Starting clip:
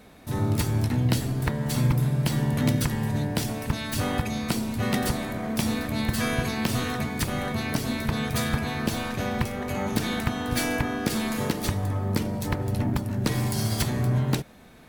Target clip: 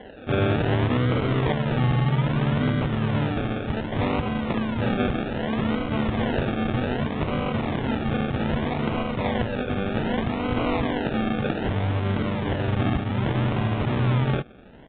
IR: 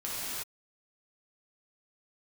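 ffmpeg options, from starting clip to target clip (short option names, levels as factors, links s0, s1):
-af "asetnsamples=n=441:p=0,asendcmd='1.52 equalizer g 3.5',equalizer=f=490:w=1.2:g=13.5,alimiter=limit=0.15:level=0:latency=1:release=27,acrusher=samples=35:mix=1:aa=0.000001:lfo=1:lforange=21:lforate=0.64,aresample=8000,aresample=44100,volume=1.33"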